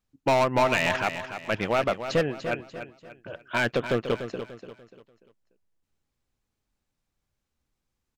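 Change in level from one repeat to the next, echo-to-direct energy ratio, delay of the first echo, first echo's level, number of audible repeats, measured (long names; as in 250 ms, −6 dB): −8.5 dB, −9.5 dB, 293 ms, −10.0 dB, 3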